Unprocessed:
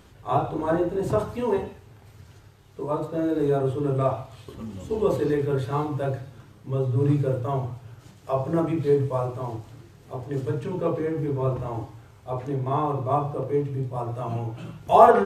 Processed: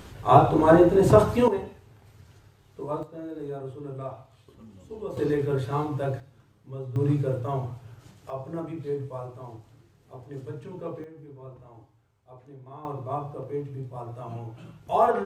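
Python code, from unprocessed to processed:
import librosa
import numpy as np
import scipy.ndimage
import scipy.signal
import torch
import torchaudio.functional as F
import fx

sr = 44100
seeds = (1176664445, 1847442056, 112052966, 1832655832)

y = fx.gain(x, sr, db=fx.steps((0.0, 7.5), (1.48, -4.0), (3.03, -12.5), (5.17, -1.5), (6.2, -11.0), (6.96, -2.5), (8.3, -10.0), (11.04, -19.0), (12.85, -7.5)))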